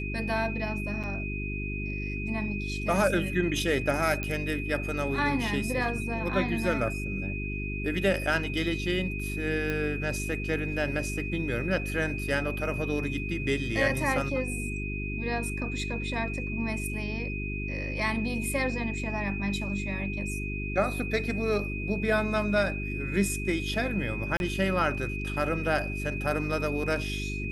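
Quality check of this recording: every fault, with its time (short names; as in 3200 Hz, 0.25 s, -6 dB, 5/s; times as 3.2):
hum 50 Hz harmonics 8 -34 dBFS
tone 2500 Hz -36 dBFS
1.03–1.04 gap 7 ms
4.23 pop -17 dBFS
9.7 pop -18 dBFS
24.37–24.4 gap 31 ms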